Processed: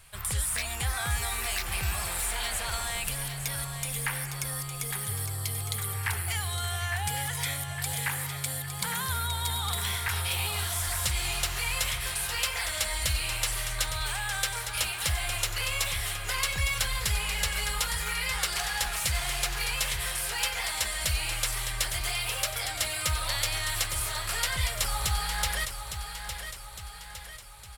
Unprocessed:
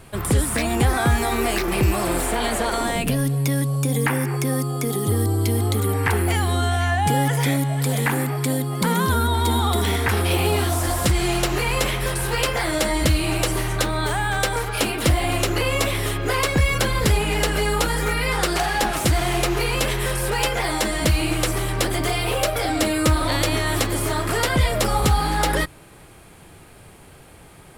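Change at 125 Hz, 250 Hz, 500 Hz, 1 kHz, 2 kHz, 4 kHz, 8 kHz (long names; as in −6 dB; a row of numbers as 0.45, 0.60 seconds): −13.0, −23.5, −19.5, −12.0, −6.5, −3.5, −2.0 decibels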